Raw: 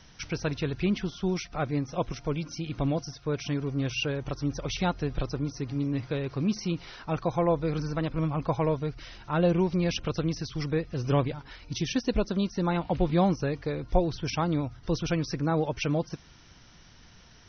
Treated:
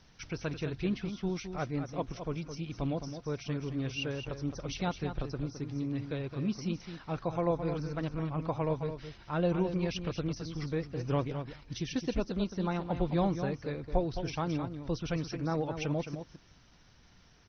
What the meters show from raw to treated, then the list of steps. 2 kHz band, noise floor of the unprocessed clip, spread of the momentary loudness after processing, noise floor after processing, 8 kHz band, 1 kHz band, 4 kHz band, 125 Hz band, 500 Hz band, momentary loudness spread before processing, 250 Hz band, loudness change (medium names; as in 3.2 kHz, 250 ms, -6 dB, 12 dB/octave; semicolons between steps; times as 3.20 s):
-6.0 dB, -54 dBFS, 7 LU, -60 dBFS, no reading, -5.5 dB, -6.5 dB, -5.0 dB, -5.0 dB, 7 LU, -5.0 dB, -5.5 dB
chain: delay 215 ms -8.5 dB; trim -5.5 dB; Opus 20 kbps 48 kHz